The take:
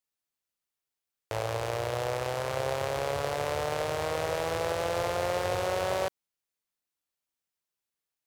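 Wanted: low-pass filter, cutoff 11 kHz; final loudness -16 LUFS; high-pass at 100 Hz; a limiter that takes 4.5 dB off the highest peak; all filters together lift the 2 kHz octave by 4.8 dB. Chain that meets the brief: high-pass 100 Hz; low-pass 11 kHz; peaking EQ 2 kHz +6 dB; trim +15.5 dB; peak limiter -2 dBFS

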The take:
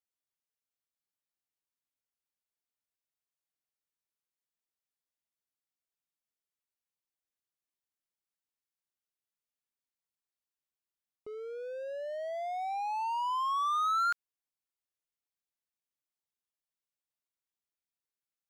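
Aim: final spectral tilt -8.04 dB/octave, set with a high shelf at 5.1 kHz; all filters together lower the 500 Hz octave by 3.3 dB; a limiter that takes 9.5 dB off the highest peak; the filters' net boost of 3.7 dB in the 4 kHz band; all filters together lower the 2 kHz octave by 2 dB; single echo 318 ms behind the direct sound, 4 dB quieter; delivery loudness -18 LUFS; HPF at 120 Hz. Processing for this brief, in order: high-pass 120 Hz; peaking EQ 500 Hz -4 dB; peaking EQ 2 kHz -4.5 dB; peaking EQ 4 kHz +4.5 dB; treble shelf 5.1 kHz +3 dB; peak limiter -34 dBFS; delay 318 ms -4 dB; trim +21.5 dB

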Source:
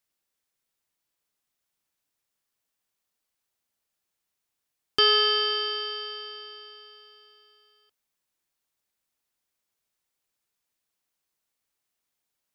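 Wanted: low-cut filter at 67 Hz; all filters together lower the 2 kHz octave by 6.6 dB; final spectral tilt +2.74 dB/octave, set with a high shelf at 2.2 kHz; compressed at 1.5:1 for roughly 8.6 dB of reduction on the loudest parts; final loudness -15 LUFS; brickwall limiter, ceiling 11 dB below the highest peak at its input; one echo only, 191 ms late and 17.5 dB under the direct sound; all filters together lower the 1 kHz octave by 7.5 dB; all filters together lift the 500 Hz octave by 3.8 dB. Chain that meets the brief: high-pass 67 Hz; peaking EQ 500 Hz +6.5 dB; peaking EQ 1 kHz -9 dB; peaking EQ 2 kHz -3.5 dB; treble shelf 2.2 kHz -4 dB; compression 1.5:1, threshold -43 dBFS; peak limiter -28 dBFS; delay 191 ms -17.5 dB; trim +24 dB

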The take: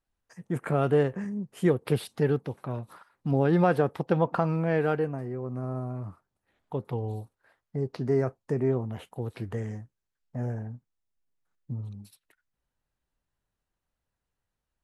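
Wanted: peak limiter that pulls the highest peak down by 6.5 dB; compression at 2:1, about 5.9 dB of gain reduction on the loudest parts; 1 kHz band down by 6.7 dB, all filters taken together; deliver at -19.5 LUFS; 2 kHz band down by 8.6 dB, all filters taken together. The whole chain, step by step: peaking EQ 1 kHz -8.5 dB; peaking EQ 2 kHz -8 dB; compression 2:1, threshold -30 dBFS; trim +16.5 dB; peak limiter -7.5 dBFS

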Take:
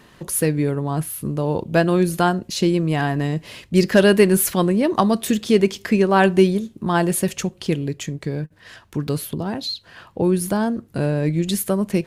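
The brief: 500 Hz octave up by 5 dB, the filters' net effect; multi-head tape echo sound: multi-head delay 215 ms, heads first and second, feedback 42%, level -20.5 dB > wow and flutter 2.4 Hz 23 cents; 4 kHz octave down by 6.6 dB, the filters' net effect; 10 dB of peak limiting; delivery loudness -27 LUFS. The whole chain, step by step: peaking EQ 500 Hz +7 dB; peaking EQ 4 kHz -9 dB; peak limiter -8.5 dBFS; multi-head delay 215 ms, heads first and second, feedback 42%, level -20.5 dB; wow and flutter 2.4 Hz 23 cents; trim -7 dB

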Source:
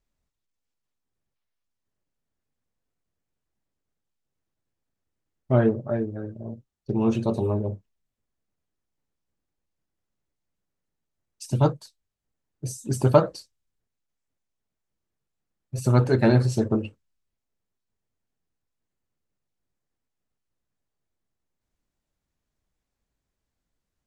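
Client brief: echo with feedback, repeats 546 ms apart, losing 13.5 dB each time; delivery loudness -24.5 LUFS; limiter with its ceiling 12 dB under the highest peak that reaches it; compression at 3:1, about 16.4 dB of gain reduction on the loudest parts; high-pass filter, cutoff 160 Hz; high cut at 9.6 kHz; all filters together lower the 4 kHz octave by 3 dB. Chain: high-pass 160 Hz; low-pass 9.6 kHz; peaking EQ 4 kHz -3.5 dB; compression 3:1, threshold -34 dBFS; peak limiter -30.5 dBFS; feedback delay 546 ms, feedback 21%, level -13.5 dB; trim +17.5 dB

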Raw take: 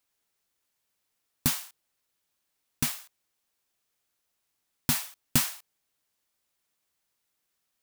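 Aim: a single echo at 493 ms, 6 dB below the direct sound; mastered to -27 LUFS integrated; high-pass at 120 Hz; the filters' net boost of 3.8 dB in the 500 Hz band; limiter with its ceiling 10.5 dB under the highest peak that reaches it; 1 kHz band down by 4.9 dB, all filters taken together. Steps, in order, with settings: high-pass 120 Hz; peaking EQ 500 Hz +7.5 dB; peaking EQ 1 kHz -8.5 dB; peak limiter -17 dBFS; delay 493 ms -6 dB; trim +7 dB

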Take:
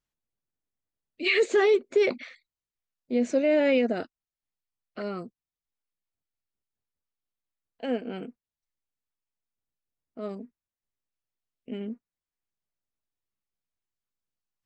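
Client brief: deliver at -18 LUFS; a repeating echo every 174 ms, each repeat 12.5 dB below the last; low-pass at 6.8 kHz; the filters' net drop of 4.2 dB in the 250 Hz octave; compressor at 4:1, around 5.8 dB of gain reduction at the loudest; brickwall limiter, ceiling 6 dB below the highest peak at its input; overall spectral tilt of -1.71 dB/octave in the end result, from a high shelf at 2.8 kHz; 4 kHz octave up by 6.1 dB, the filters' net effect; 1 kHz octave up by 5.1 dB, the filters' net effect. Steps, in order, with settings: low-pass 6.8 kHz; peaking EQ 250 Hz -5.5 dB; peaking EQ 1 kHz +7 dB; treble shelf 2.8 kHz +3.5 dB; peaking EQ 4 kHz +5.5 dB; compression 4:1, threshold -24 dBFS; peak limiter -20 dBFS; feedback delay 174 ms, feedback 24%, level -12.5 dB; trim +14 dB

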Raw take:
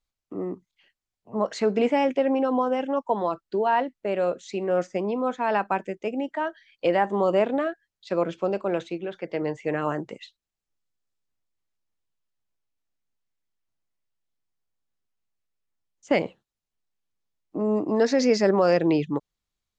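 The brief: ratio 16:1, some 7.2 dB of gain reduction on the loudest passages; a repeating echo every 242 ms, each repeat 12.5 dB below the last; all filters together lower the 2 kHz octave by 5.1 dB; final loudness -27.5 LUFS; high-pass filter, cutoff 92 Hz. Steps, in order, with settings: high-pass 92 Hz; peaking EQ 2 kHz -6.5 dB; compression 16:1, threshold -23 dBFS; feedback delay 242 ms, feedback 24%, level -12.5 dB; trim +2.5 dB

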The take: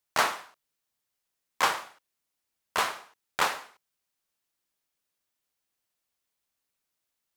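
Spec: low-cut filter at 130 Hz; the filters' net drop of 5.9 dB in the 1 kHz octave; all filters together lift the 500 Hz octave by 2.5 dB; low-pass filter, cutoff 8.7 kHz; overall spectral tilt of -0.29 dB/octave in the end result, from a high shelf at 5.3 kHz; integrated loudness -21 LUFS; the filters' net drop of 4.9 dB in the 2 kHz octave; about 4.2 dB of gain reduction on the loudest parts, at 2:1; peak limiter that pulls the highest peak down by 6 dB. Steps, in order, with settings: high-pass 130 Hz; low-pass 8.7 kHz; peaking EQ 500 Hz +6 dB; peaking EQ 1 kHz -8 dB; peaking EQ 2 kHz -4.5 dB; treble shelf 5.3 kHz +4.5 dB; compression 2:1, threshold -30 dBFS; trim +17.5 dB; peak limiter -4.5 dBFS

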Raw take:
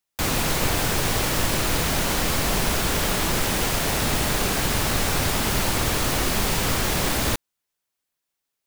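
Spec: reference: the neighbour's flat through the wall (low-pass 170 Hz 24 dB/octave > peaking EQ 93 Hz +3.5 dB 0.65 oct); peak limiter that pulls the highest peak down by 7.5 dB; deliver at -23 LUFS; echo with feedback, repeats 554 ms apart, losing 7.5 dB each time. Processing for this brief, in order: peak limiter -16 dBFS; low-pass 170 Hz 24 dB/octave; peaking EQ 93 Hz +3.5 dB 0.65 oct; feedback delay 554 ms, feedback 42%, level -7.5 dB; trim +10.5 dB

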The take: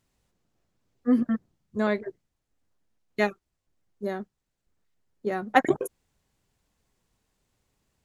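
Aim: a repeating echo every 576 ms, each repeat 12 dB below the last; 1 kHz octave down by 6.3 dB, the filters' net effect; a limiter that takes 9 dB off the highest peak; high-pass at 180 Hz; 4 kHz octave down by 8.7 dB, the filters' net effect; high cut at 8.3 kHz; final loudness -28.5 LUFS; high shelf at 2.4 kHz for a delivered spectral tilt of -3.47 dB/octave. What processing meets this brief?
high-pass 180 Hz; low-pass 8.3 kHz; peaking EQ 1 kHz -8.5 dB; treble shelf 2.4 kHz -4 dB; peaking EQ 4 kHz -7.5 dB; peak limiter -17 dBFS; feedback delay 576 ms, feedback 25%, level -12 dB; trim +5 dB

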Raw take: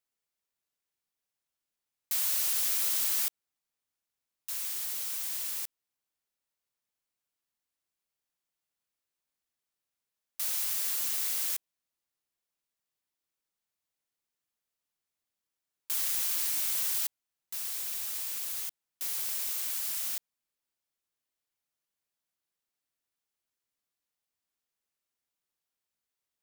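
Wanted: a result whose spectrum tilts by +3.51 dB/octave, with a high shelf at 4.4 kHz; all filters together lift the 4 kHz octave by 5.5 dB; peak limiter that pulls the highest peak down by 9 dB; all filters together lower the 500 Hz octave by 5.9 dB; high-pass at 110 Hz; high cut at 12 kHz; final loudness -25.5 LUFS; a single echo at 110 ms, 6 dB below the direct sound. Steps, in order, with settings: high-pass 110 Hz; low-pass 12 kHz; peaking EQ 500 Hz -8 dB; peaking EQ 4 kHz +5 dB; treble shelf 4.4 kHz +3.5 dB; peak limiter -26 dBFS; delay 110 ms -6 dB; trim +7.5 dB

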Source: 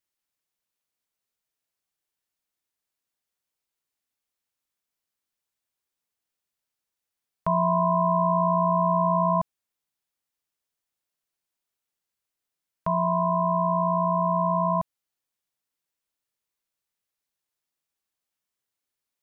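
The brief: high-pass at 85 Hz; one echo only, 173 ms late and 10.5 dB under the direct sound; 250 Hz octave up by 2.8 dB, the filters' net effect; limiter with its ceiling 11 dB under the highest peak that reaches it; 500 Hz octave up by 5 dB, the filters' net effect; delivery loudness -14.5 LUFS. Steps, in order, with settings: high-pass 85 Hz; peaking EQ 250 Hz +5 dB; peaking EQ 500 Hz +7.5 dB; peak limiter -21 dBFS; delay 173 ms -10.5 dB; trim +13 dB

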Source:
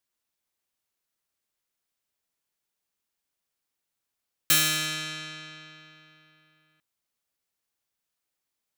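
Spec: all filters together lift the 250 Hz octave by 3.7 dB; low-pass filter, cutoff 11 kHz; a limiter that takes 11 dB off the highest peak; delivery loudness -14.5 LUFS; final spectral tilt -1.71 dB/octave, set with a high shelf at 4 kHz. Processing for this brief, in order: low-pass 11 kHz; peaking EQ 250 Hz +6 dB; treble shelf 4 kHz +6 dB; trim +15.5 dB; peak limiter -3.5 dBFS

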